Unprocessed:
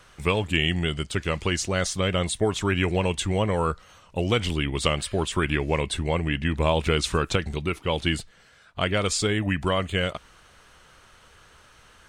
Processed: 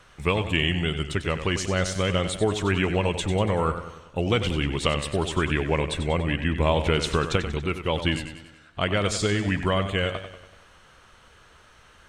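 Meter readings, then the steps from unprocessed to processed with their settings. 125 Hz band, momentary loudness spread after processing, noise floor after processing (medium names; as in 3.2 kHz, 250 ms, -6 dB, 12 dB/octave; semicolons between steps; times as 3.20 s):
+0.5 dB, 6 LU, -54 dBFS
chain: treble shelf 6.6 kHz -6.5 dB; band-stop 4.8 kHz, Q 25; modulated delay 95 ms, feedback 52%, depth 71 cents, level -10 dB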